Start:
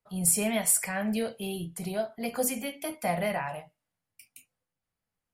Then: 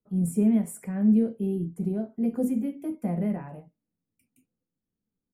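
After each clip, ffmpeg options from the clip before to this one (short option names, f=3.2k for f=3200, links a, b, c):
-af "firequalizer=gain_entry='entry(130,0);entry(210,11);entry(420,4);entry(630,-10);entry(4400,-28);entry(7000,-18)':delay=0.05:min_phase=1"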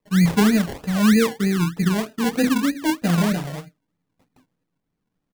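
-af "aecho=1:1:6.6:0.43,acrusher=samples=28:mix=1:aa=0.000001:lfo=1:lforange=16.8:lforate=3.2,volume=8dB"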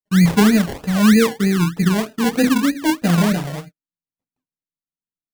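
-af "agate=range=-31dB:threshold=-40dB:ratio=16:detection=peak,volume=3.5dB"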